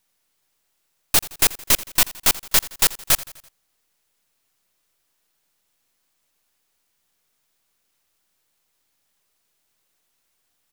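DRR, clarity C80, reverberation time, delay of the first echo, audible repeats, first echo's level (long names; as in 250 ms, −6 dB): no reverb audible, no reverb audible, no reverb audible, 84 ms, 3, −19.0 dB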